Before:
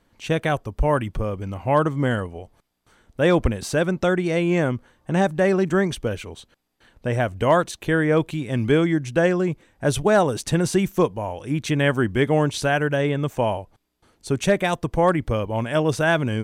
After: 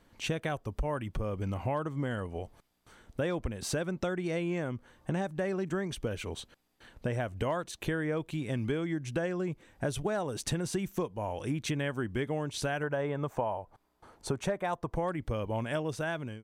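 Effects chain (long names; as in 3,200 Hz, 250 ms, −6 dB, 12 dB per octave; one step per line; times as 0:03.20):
fade-out on the ending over 0.71 s
0:12.83–0:14.96: drawn EQ curve 290 Hz 0 dB, 960 Hz +9 dB, 2,800 Hz −4 dB
downward compressor 6 to 1, threshold −30 dBFS, peak gain reduction 19.5 dB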